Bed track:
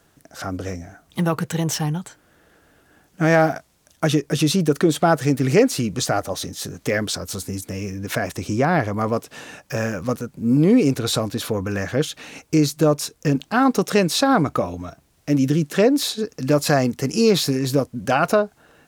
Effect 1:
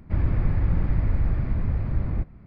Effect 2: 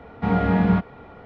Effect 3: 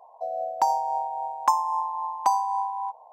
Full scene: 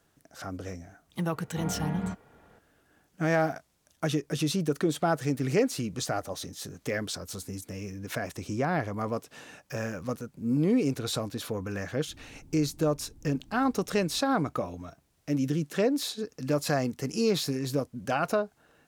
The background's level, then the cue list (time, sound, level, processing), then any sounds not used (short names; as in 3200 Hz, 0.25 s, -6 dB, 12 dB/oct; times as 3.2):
bed track -9.5 dB
1.34 add 2 -14.5 dB
11.97 add 1 -17 dB + vocal tract filter u
not used: 3